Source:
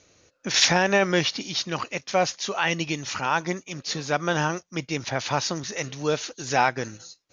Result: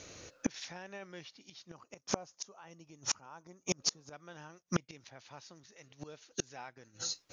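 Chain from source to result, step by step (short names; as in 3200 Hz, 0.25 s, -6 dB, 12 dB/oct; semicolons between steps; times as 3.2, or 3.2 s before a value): 1.68–4.13 band shelf 2700 Hz -10 dB; flipped gate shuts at -24 dBFS, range -34 dB; gain +7.5 dB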